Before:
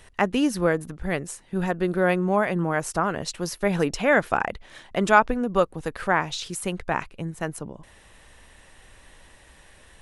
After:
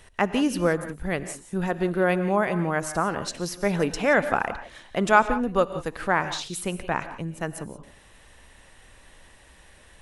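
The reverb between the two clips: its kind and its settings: gated-style reverb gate 200 ms rising, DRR 11.5 dB; trim -1 dB

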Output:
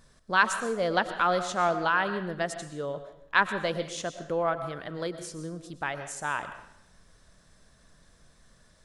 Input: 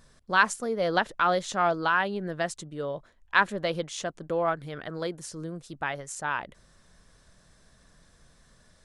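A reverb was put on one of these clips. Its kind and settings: algorithmic reverb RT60 0.72 s, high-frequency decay 0.95×, pre-delay 75 ms, DRR 10 dB; trim -1 dB

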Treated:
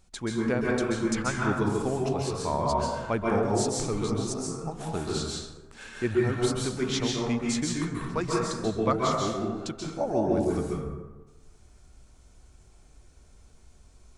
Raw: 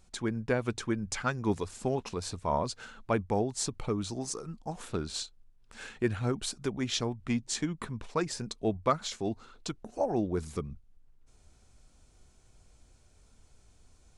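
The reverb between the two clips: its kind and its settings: plate-style reverb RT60 1.2 s, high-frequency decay 0.45×, pre-delay 120 ms, DRR -3 dB

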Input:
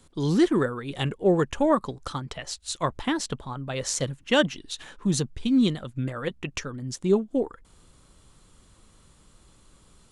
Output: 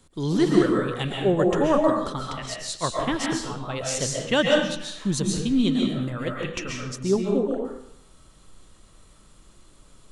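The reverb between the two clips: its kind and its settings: algorithmic reverb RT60 0.7 s, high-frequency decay 0.9×, pre-delay 95 ms, DRR -1.5 dB; trim -1 dB

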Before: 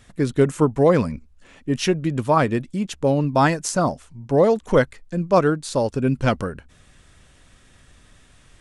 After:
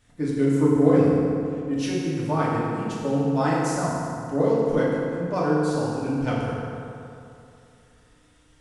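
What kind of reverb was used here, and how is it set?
FDN reverb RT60 2.7 s, high-frequency decay 0.6×, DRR -7 dB; trim -13 dB

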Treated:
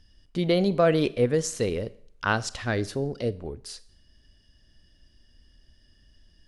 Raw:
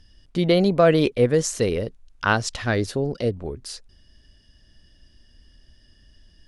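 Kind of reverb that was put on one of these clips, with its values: Schroeder reverb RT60 0.59 s, combs from 29 ms, DRR 17.5 dB; trim -4.5 dB

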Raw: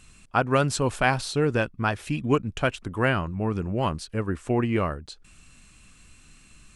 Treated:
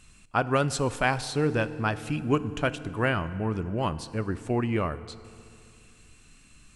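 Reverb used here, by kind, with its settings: FDN reverb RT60 2.5 s, low-frequency decay 1.2×, high-frequency decay 0.75×, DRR 14 dB; trim -2.5 dB

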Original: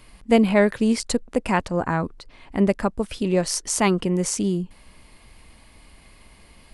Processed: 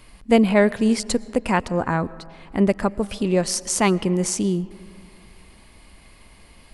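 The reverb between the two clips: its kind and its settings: algorithmic reverb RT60 2.5 s, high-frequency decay 0.4×, pre-delay 75 ms, DRR 20 dB; trim +1 dB

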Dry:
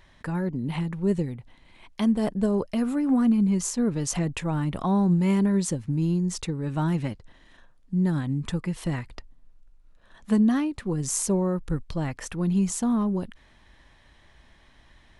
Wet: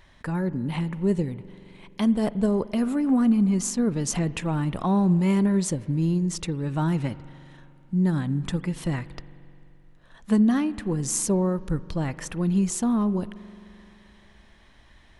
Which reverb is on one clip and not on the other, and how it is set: spring tank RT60 2.9 s, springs 43 ms, chirp 50 ms, DRR 16.5 dB; trim +1 dB

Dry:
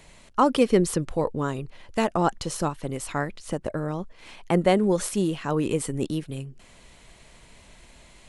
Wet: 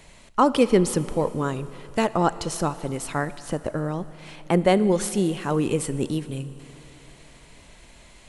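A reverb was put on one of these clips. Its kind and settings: Schroeder reverb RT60 3.4 s, combs from 26 ms, DRR 15 dB; trim +1.5 dB

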